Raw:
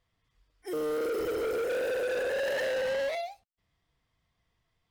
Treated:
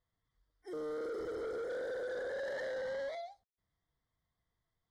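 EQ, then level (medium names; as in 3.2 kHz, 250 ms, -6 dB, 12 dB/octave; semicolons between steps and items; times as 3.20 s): Butterworth band-stop 2.6 kHz, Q 2.3; distance through air 67 m; -8.5 dB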